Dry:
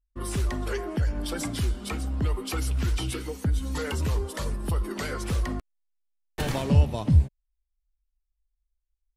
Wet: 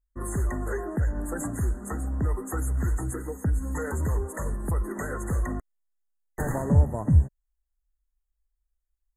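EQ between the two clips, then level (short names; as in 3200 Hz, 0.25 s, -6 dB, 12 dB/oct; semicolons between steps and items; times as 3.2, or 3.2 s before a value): brick-wall FIR band-stop 2000–6300 Hz; 0.0 dB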